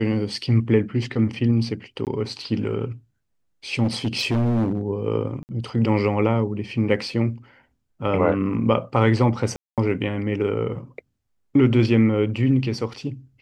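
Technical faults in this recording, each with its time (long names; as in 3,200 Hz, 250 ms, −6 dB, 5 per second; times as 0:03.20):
0:02.05–0:02.07: drop-out 18 ms
0:03.83–0:04.81: clipping −17.5 dBFS
0:05.43–0:05.49: drop-out 59 ms
0:09.56–0:09.78: drop-out 217 ms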